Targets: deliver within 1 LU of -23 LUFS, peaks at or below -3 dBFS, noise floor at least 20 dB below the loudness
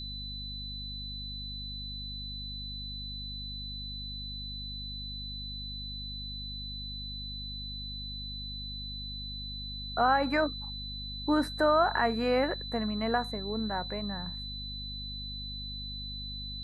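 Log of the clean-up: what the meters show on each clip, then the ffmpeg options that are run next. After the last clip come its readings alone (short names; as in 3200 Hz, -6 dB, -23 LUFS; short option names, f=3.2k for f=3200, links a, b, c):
hum 50 Hz; harmonics up to 250 Hz; hum level -40 dBFS; steady tone 4000 Hz; tone level -39 dBFS; loudness -33.5 LUFS; peak -13.5 dBFS; loudness target -23.0 LUFS
-> -af "bandreject=f=50:t=h:w=6,bandreject=f=100:t=h:w=6,bandreject=f=150:t=h:w=6,bandreject=f=200:t=h:w=6,bandreject=f=250:t=h:w=6"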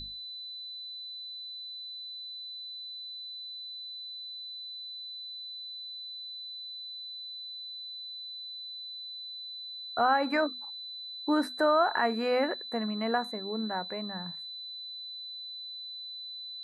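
hum none; steady tone 4000 Hz; tone level -39 dBFS
-> -af "bandreject=f=4k:w=30"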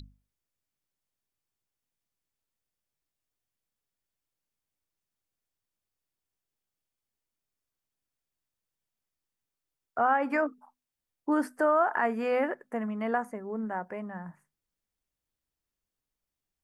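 steady tone none; loudness -29.5 LUFS; peak -14.5 dBFS; loudness target -23.0 LUFS
-> -af "volume=6.5dB"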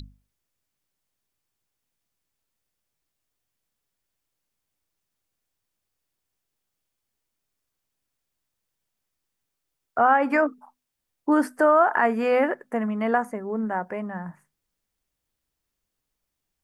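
loudness -23.0 LUFS; peak -8.0 dBFS; noise floor -82 dBFS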